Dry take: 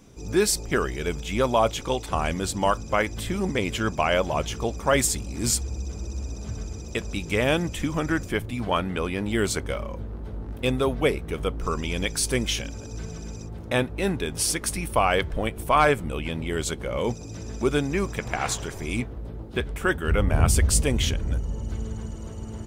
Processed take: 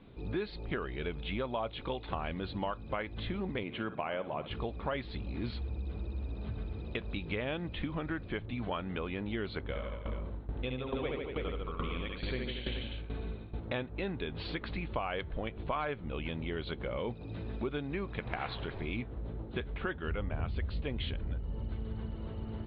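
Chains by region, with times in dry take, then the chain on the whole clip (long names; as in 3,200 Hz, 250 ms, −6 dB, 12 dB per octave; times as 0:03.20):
0:03.63–0:04.51: high-pass filter 150 Hz + high-frequency loss of the air 300 metres + flutter between parallel walls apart 10.4 metres, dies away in 0.27 s
0:09.62–0:13.60: reverse bouncing-ball delay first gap 70 ms, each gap 1.1×, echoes 5, each echo −2 dB + shaped tremolo saw down 2.3 Hz, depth 85% + linear-phase brick-wall low-pass 4,600 Hz
whole clip: Butterworth low-pass 4,200 Hz 96 dB per octave; downward compressor 4 to 1, threshold −30 dBFS; level −3.5 dB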